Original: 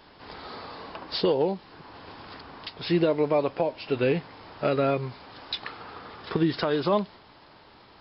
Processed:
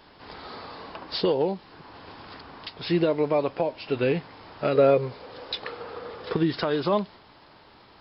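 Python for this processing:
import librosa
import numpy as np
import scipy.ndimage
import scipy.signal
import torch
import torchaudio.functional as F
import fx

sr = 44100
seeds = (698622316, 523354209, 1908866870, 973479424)

y = fx.peak_eq(x, sr, hz=490.0, db=14.5, octaves=0.43, at=(4.75, 6.33))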